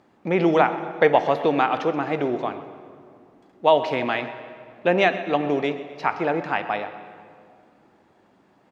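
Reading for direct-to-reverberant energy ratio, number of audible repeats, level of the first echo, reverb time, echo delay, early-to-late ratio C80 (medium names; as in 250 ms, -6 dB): 9.5 dB, 3, -17.0 dB, 2.3 s, 127 ms, 11.0 dB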